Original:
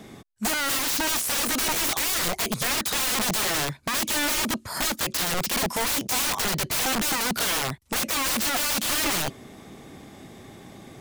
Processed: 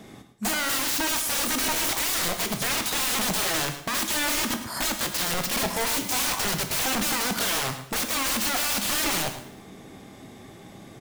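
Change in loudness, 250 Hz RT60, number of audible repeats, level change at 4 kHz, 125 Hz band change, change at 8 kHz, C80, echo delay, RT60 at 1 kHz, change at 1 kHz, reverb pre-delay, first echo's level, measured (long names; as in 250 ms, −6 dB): −0.5 dB, 0.80 s, 1, −0.5 dB, −1.0 dB, −0.5 dB, 10.0 dB, 108 ms, 0.75 s, −0.5 dB, 6 ms, −13.5 dB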